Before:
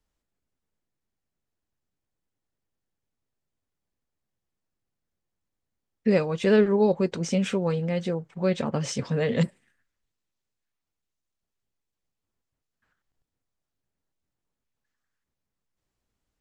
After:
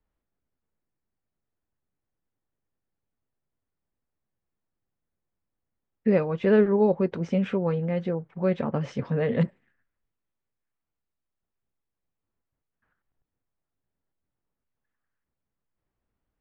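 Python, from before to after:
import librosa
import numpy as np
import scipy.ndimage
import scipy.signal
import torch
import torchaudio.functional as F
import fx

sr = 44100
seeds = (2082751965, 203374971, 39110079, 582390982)

y = scipy.signal.sosfilt(scipy.signal.butter(2, 2000.0, 'lowpass', fs=sr, output='sos'), x)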